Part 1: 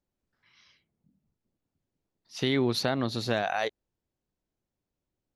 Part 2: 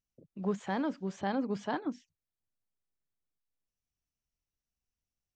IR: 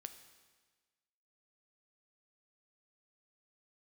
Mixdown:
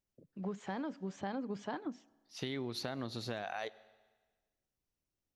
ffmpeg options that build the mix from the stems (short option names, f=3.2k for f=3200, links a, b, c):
-filter_complex "[0:a]volume=-10.5dB,asplit=2[a][b];[b]volume=-3.5dB[c];[1:a]volume=-4dB,asplit=2[d][e];[e]volume=-10dB[f];[2:a]atrim=start_sample=2205[g];[c][f]amix=inputs=2:normalize=0[h];[h][g]afir=irnorm=-1:irlink=0[i];[a][d][i]amix=inputs=3:normalize=0,acompressor=threshold=-35dB:ratio=6"